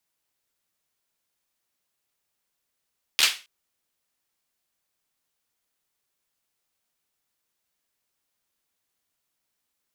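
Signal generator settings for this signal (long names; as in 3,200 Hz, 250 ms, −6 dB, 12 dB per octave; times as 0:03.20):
synth clap length 0.27 s, apart 13 ms, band 3,000 Hz, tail 0.30 s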